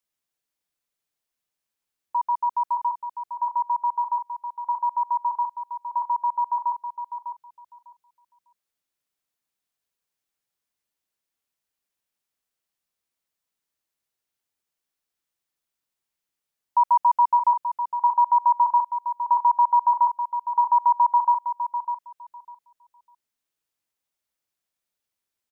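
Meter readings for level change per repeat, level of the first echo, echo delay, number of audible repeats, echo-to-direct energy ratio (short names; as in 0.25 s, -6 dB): -15.5 dB, -9.0 dB, 0.601 s, 2, -9.0 dB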